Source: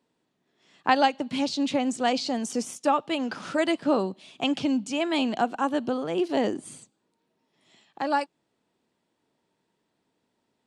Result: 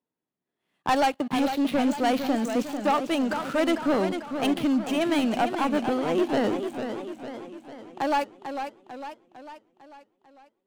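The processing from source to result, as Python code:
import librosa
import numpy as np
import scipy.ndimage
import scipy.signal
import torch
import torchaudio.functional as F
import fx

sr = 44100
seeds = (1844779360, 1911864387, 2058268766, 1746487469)

y = scipy.signal.medfilt(x, 9)
y = fx.leveller(y, sr, passes=3)
y = fx.echo_warbled(y, sr, ms=449, feedback_pct=53, rate_hz=2.8, cents=137, wet_db=-8)
y = F.gain(torch.from_numpy(y), -8.0).numpy()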